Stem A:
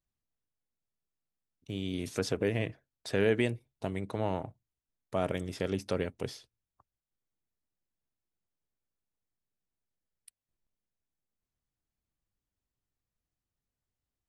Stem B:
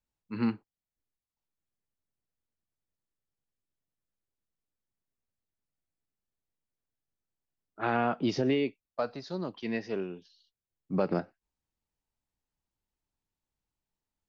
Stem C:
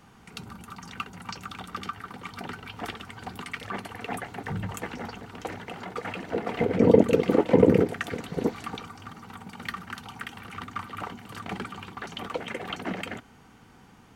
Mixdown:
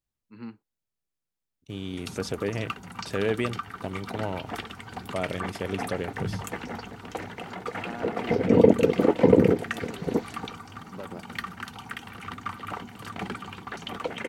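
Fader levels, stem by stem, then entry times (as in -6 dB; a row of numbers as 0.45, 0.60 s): +0.5, -11.5, +0.5 dB; 0.00, 0.00, 1.70 s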